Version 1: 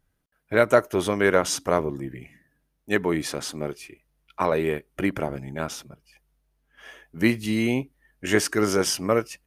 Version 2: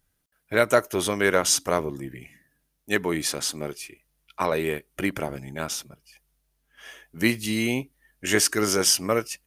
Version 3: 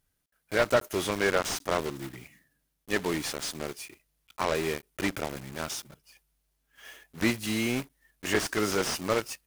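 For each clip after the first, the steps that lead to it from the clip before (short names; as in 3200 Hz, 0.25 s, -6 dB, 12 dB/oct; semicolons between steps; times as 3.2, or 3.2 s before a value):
high shelf 2800 Hz +10.5 dB; gain -2.5 dB
block floating point 3-bit; slew limiter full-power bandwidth 270 Hz; gain -4 dB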